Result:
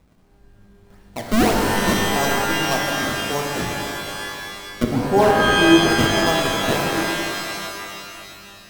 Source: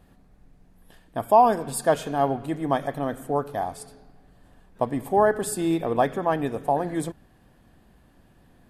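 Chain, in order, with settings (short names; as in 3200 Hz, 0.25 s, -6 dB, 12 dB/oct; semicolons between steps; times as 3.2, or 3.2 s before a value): decimation with a swept rate 29×, swing 160% 1.7 Hz; 4.83–5.88 tilt shelf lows +8 dB, about 1100 Hz; shimmer reverb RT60 2.6 s, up +12 st, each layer -2 dB, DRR 1 dB; gain -1.5 dB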